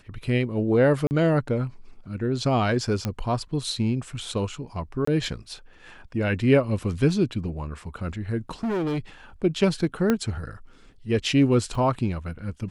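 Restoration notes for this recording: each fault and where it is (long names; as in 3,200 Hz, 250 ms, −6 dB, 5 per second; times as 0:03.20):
0:01.07–0:01.11: drop-out 39 ms
0:03.05: click −13 dBFS
0:05.05–0:05.07: drop-out 24 ms
0:08.49–0:08.99: clipping −23.5 dBFS
0:10.10: click −9 dBFS
0:11.75: drop-out 3.3 ms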